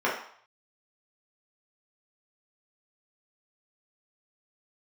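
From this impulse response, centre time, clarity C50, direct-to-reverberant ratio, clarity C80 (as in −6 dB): 36 ms, 5.5 dB, −6.5 dB, 9.0 dB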